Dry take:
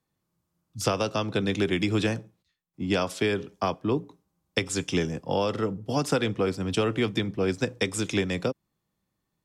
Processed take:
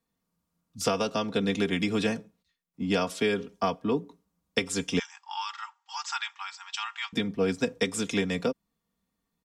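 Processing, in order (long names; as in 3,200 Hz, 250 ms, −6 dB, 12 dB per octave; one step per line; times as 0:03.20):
0:04.99–0:07.13: linear-phase brick-wall band-pass 770–8,100 Hz
comb filter 4.3 ms, depth 67%
level −2.5 dB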